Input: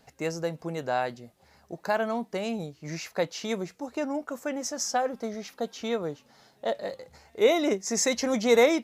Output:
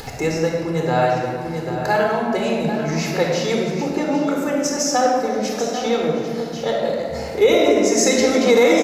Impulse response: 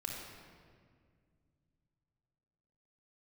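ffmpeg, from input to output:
-filter_complex "[0:a]aecho=1:1:794:0.224,acompressor=mode=upward:threshold=0.0447:ratio=2.5[s0];[1:a]atrim=start_sample=2205[s1];[s0][s1]afir=irnorm=-1:irlink=0,alimiter=level_in=4.73:limit=0.891:release=50:level=0:latency=1,volume=0.631"

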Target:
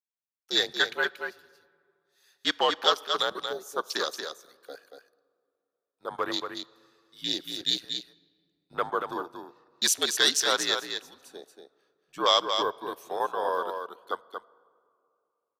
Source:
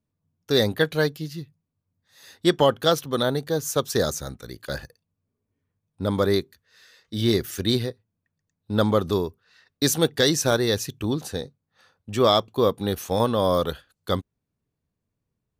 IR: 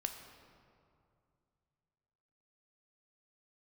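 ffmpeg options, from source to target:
-filter_complex "[0:a]highpass=980,afwtdn=0.0224,afreqshift=-64,aecho=1:1:232:0.473,asplit=2[s0][s1];[1:a]atrim=start_sample=2205[s2];[s1][s2]afir=irnorm=-1:irlink=0,volume=0.211[s3];[s0][s3]amix=inputs=2:normalize=0"

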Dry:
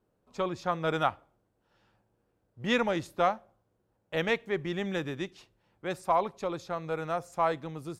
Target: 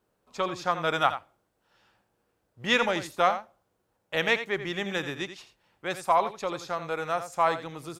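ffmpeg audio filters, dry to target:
-af "tiltshelf=f=660:g=-5,aecho=1:1:85:0.266,volume=1.26"

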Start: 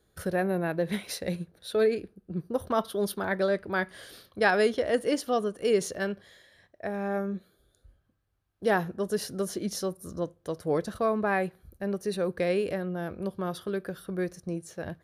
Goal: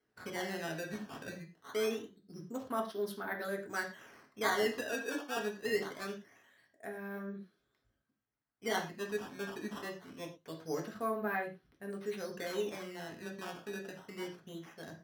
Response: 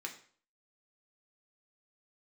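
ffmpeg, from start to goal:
-filter_complex "[0:a]acrusher=samples=12:mix=1:aa=0.000001:lfo=1:lforange=19.2:lforate=0.24,asettb=1/sr,asplit=3[s0][s1][s2];[s0]atrim=end=4.864[s3];[s1]atrim=start=4.86:end=5.37,asetpts=PTS-STARTPTS,afade=t=in:d=0.004:c=qsin,afade=t=out:st=0.506:d=0.004:c=qsin,highpass=f=260:w=0.5412,highpass=f=260:w=1.3066[s4];[s2]atrim=start=5.366[s5];[s3][s4]acrossfade=d=0.004:c1=hsin:c2=qsin[s6];[s6][s5]acrossfade=d=0.004:c1=qsin:c2=hsin[s7];[1:a]atrim=start_sample=2205,atrim=end_sample=4410,asetrate=36603,aresample=44100[s8];[s7][s8]afir=irnorm=-1:irlink=0,volume=0.376"

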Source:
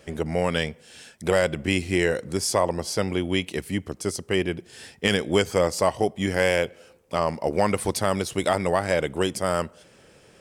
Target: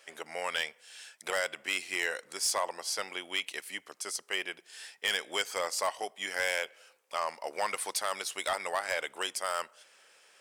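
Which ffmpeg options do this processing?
-af "highpass=1000,asoftclip=type=hard:threshold=0.106,volume=0.75"

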